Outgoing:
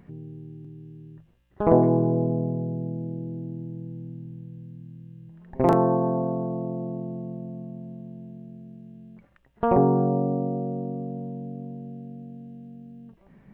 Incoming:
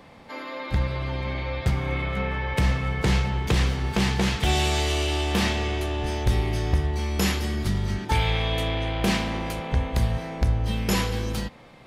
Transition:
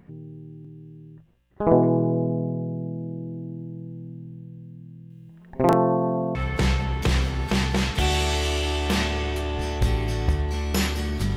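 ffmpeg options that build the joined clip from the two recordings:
-filter_complex "[0:a]asettb=1/sr,asplit=3[a][b][c];[a]atrim=end=5.104[d];[b]atrim=start=5.1:end=6.35,asetpts=PTS-STARTPTS,afade=t=in:d=0.004:c=qsin,afade=t=out:st=1.246:d=0.004:c=qsin,highshelf=f=2k:g=8.5[e];[c]atrim=start=6.346[f];[d][e]acrossfade=d=0.004:c1=hsin:c2=qsin[g];[g][f]acrossfade=d=0.004:c1=qsin:c2=hsin,apad=whole_dur=11.36,atrim=end=11.36,atrim=end=6.352[h];[1:a]atrim=start=2.798:end=7.81[i];[h][i]acrossfade=d=0.004:c1=hsin:c2=hsin"

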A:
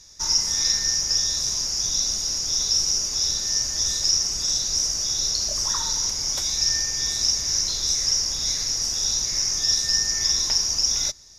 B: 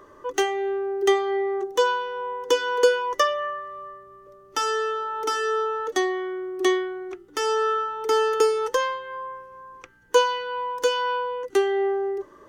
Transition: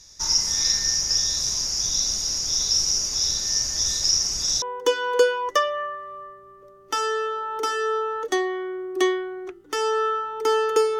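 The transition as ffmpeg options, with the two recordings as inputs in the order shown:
-filter_complex "[0:a]apad=whole_dur=10.99,atrim=end=10.99,atrim=end=4.622[a];[1:a]atrim=start=2.258:end=8.63[b];[a][b]acrossfade=d=0.004:c1=hsin:c2=hsin"

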